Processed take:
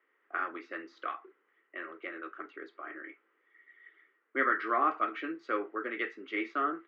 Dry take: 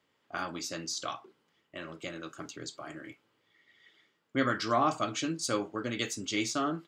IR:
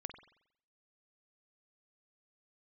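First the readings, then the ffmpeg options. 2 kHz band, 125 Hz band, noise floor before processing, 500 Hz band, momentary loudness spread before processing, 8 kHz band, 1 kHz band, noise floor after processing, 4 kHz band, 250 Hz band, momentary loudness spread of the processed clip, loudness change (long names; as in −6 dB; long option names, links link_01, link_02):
+3.5 dB, below −25 dB, −75 dBFS, −3.0 dB, 16 LU, below −35 dB, +1.5 dB, −75 dBFS, −15.5 dB, −5.5 dB, 16 LU, −1.0 dB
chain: -af "highpass=frequency=350:width=0.5412,highpass=frequency=350:width=1.3066,equalizer=frequency=370:width_type=q:width=4:gain=4,equalizer=frequency=610:width_type=q:width=4:gain=-7,equalizer=frequency=880:width_type=q:width=4:gain=-7,equalizer=frequency=1300:width_type=q:width=4:gain=5,equalizer=frequency=1900:width_type=q:width=4:gain=8,lowpass=frequency=2200:width=0.5412,lowpass=frequency=2200:width=1.3066"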